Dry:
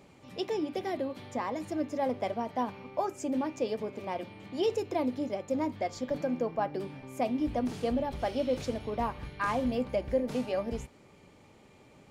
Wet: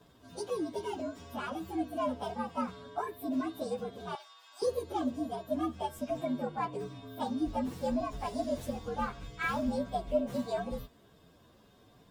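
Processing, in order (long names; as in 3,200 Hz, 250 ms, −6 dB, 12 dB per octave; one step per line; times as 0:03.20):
partials spread apart or drawn together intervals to 119%
0:04.15–0:04.62: high-pass filter 910 Hz 24 dB per octave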